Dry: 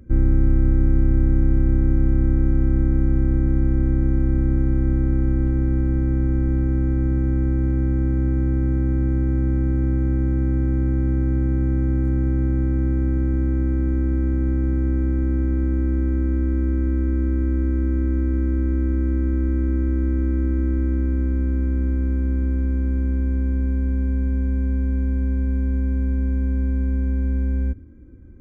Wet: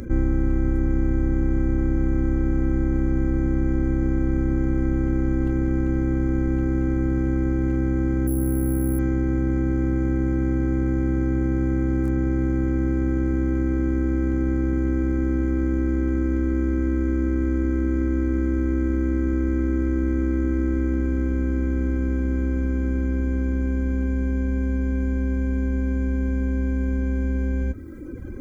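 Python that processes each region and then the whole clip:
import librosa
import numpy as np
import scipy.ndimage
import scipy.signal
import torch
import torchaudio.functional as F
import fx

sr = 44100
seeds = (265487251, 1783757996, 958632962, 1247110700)

y = fx.chain(x, sr, fx.high_shelf(hz=2100.0, db=-11.0),
    fx.resample_bad(factor=4, down='filtered', up='hold'), at=(8.27, 8.99))
y = fx.dereverb_blind(y, sr, rt60_s=0.87)
y = fx.bass_treble(y, sr, bass_db=-9, treble_db=6)
y = fx.env_flatten(y, sr, amount_pct=50)
y = F.gain(torch.from_numpy(y), 4.5).numpy()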